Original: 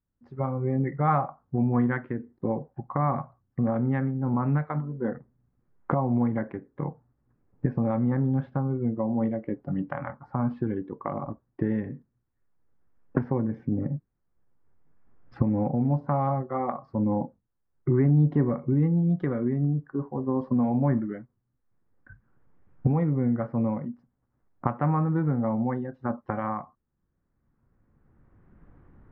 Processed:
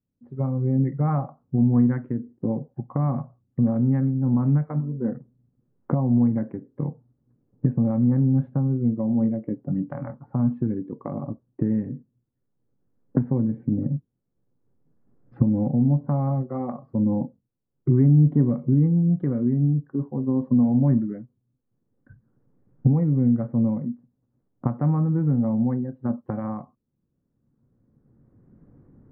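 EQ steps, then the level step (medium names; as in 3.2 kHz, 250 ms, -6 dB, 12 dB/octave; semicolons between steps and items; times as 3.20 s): graphic EQ 125/250/500 Hz +11/+11/+9 dB; dynamic bell 440 Hz, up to -5 dB, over -25 dBFS, Q 1.3; distance through air 370 m; -7.5 dB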